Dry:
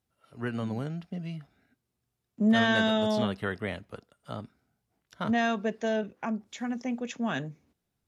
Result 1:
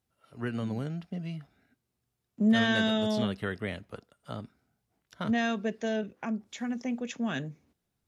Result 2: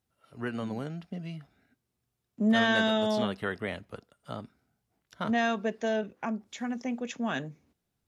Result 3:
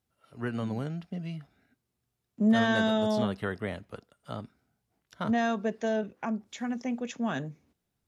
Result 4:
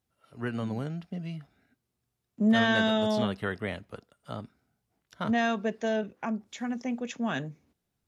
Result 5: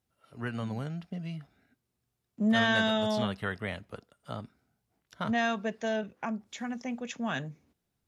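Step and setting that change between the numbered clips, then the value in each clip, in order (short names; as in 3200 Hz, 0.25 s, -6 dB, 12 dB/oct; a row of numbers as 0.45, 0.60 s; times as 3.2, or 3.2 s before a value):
dynamic EQ, frequency: 910, 110, 2600, 9500, 340 Hz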